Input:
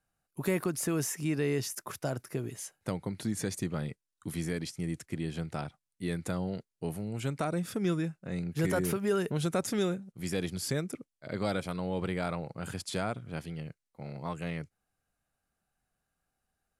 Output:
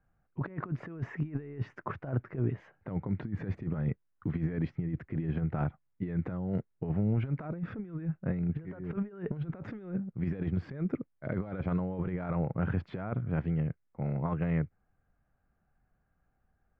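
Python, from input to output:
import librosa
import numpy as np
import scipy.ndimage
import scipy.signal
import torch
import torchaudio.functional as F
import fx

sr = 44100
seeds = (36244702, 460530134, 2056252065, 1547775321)

y = scipy.signal.sosfilt(scipy.signal.butter(4, 2000.0, 'lowpass', fs=sr, output='sos'), x)
y = fx.over_compress(y, sr, threshold_db=-36.0, ratio=-0.5)
y = fx.low_shelf(y, sr, hz=200.0, db=9.0)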